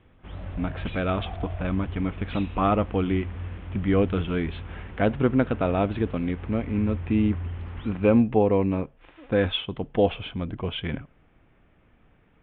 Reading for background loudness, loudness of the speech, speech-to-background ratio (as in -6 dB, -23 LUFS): -37.0 LUFS, -26.0 LUFS, 11.0 dB